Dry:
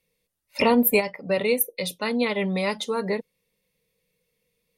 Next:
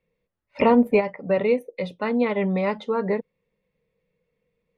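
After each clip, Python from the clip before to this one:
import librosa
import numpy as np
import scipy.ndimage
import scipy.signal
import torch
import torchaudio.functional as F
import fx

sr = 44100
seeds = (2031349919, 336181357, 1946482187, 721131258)

y = scipy.signal.sosfilt(scipy.signal.butter(2, 1700.0, 'lowpass', fs=sr, output='sos'), x)
y = y * librosa.db_to_amplitude(2.5)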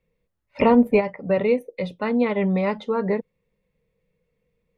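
y = fx.low_shelf(x, sr, hz=120.0, db=8.5)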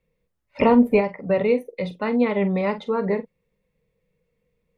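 y = fx.doubler(x, sr, ms=45.0, db=-12.5)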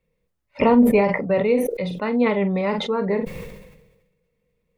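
y = fx.sustainer(x, sr, db_per_s=49.0)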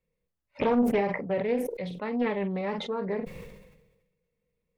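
y = fx.doppler_dist(x, sr, depth_ms=0.49)
y = y * librosa.db_to_amplitude(-8.5)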